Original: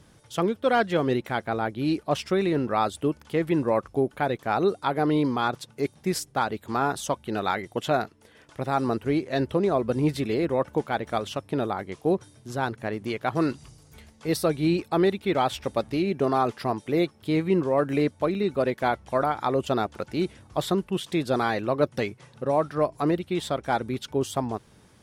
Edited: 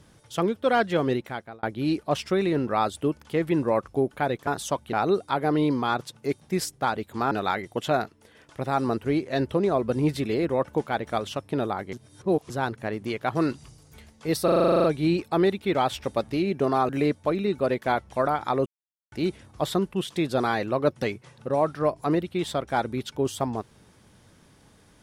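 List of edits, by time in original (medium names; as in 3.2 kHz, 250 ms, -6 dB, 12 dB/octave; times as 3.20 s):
1.08–1.63 s: fade out
6.85–7.31 s: move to 4.47 s
11.93–12.50 s: reverse
14.44 s: stutter 0.04 s, 11 plays
16.49–17.85 s: delete
19.62–20.08 s: mute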